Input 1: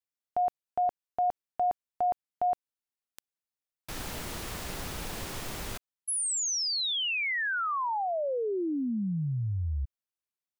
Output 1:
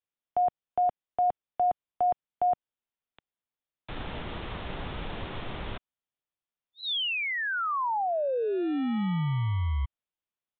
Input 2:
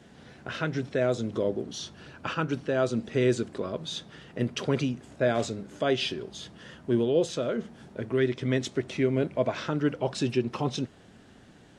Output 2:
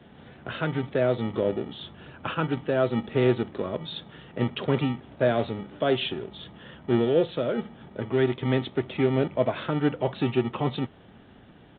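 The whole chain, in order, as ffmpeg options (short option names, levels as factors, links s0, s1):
-filter_complex "[0:a]equalizer=f=2000:t=o:w=1.4:g=-3.5,acrossover=split=250|1400[s0][s1][s2];[s0]acrusher=samples=42:mix=1:aa=0.000001[s3];[s3][s1][s2]amix=inputs=3:normalize=0,aresample=8000,aresample=44100,volume=1.41"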